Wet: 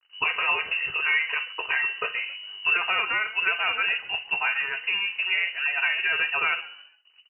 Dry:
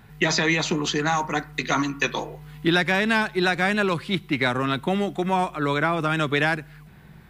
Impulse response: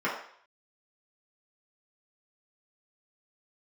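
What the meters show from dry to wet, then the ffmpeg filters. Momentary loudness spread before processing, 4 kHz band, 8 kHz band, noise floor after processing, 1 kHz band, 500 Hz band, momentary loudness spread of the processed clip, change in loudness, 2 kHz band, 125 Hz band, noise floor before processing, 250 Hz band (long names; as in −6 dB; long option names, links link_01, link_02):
6 LU, +0.5 dB, below −40 dB, −59 dBFS, −6.5 dB, −16.0 dB, 5 LU, −1.0 dB, +1.5 dB, below −25 dB, −48 dBFS, below −25 dB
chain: -filter_complex "[0:a]aemphasis=mode=reproduction:type=riaa,bandreject=frequency=60:width_type=h:width=6,bandreject=frequency=120:width_type=h:width=6,bandreject=frequency=180:width_type=h:width=6,bandreject=frequency=240:width_type=h:width=6,bandreject=frequency=300:width_type=h:width=6,bandreject=frequency=360:width_type=h:width=6,agate=range=-8dB:threshold=-33dB:ratio=16:detection=peak,aecho=1:1:3.5:0.5,acrossover=split=300[link_01][link_02];[link_01]acompressor=threshold=-29dB:ratio=6[link_03];[link_03][link_02]amix=inputs=2:normalize=0,aeval=exprs='sgn(val(0))*max(abs(val(0))-0.00708,0)':channel_layout=same,asplit=4[link_04][link_05][link_06][link_07];[link_05]adelay=137,afreqshift=-55,volume=-18.5dB[link_08];[link_06]adelay=274,afreqshift=-110,volume=-28.1dB[link_09];[link_07]adelay=411,afreqshift=-165,volume=-37.8dB[link_10];[link_04][link_08][link_09][link_10]amix=inputs=4:normalize=0,asplit=2[link_11][link_12];[1:a]atrim=start_sample=2205,afade=type=out:start_time=0.13:duration=0.01,atrim=end_sample=6174[link_13];[link_12][link_13]afir=irnorm=-1:irlink=0,volume=-15.5dB[link_14];[link_11][link_14]amix=inputs=2:normalize=0,lowpass=frequency=2600:width_type=q:width=0.5098,lowpass=frequency=2600:width_type=q:width=0.6013,lowpass=frequency=2600:width_type=q:width=0.9,lowpass=frequency=2600:width_type=q:width=2.563,afreqshift=-3000,volume=-5dB"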